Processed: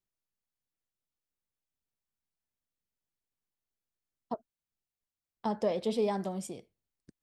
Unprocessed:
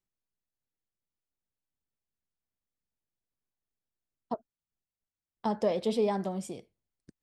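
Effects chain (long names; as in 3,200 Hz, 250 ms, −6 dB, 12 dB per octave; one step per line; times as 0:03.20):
0:05.98–0:06.47: high-shelf EQ 5,100 Hz +5.5 dB
level −2 dB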